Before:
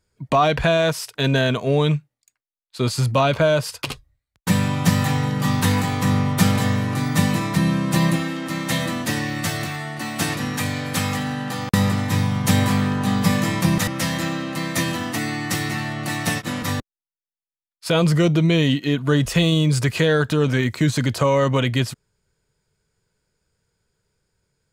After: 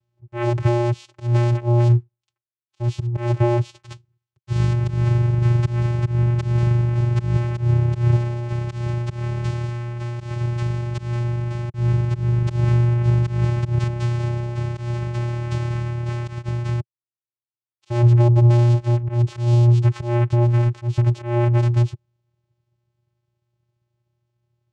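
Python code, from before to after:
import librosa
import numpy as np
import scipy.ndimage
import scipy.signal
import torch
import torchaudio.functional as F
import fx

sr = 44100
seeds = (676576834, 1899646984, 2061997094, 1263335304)

y = fx.peak_eq(x, sr, hz=4000.0, db=10.0, octaves=1.7, at=(3.83, 4.73))
y = fx.auto_swell(y, sr, attack_ms=155.0)
y = fx.vocoder(y, sr, bands=4, carrier='square', carrier_hz=119.0)
y = y * librosa.db_to_amplitude(3.5)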